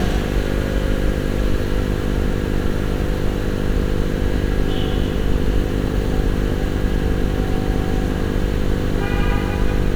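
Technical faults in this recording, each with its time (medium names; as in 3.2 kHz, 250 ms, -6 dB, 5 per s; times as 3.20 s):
buzz 50 Hz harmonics 10 -23 dBFS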